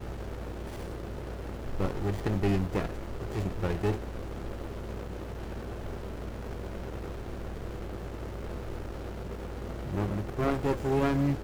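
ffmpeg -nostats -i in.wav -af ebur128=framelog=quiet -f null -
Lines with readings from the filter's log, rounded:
Integrated loudness:
  I:         -34.3 LUFS
  Threshold: -44.3 LUFS
Loudness range:
  LRA:         7.1 LU
  Threshold: -55.3 LUFS
  LRA low:   -39.6 LUFS
  LRA high:  -32.5 LUFS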